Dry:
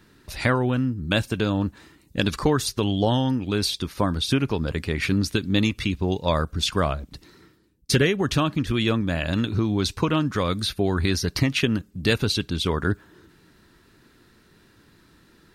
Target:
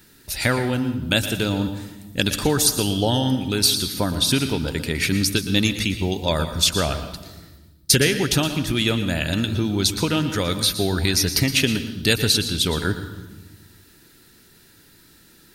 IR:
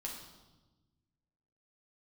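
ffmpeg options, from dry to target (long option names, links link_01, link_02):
-filter_complex "[0:a]aemphasis=mode=production:type=75kf,bandreject=frequency=1100:width=5.6,asplit=2[link_01][link_02];[1:a]atrim=start_sample=2205,adelay=115[link_03];[link_02][link_03]afir=irnorm=-1:irlink=0,volume=-8dB[link_04];[link_01][link_04]amix=inputs=2:normalize=0"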